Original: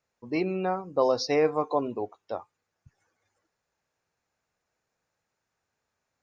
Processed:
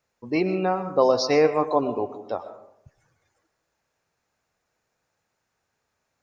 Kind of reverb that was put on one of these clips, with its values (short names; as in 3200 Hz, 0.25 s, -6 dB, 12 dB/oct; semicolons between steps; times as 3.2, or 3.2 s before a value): digital reverb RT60 0.73 s, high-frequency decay 0.45×, pre-delay 80 ms, DRR 10.5 dB; gain +4.5 dB